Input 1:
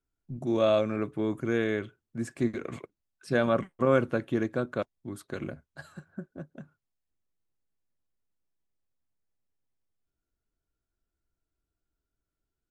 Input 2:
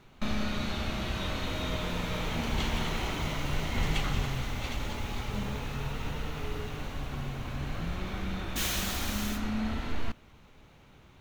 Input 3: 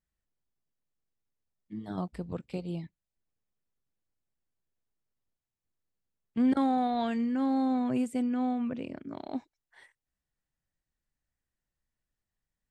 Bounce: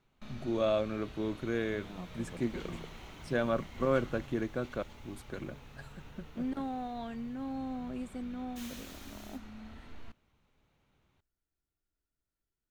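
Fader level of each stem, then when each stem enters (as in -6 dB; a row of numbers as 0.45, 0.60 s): -5.5, -16.5, -10.5 dB; 0.00, 0.00, 0.00 s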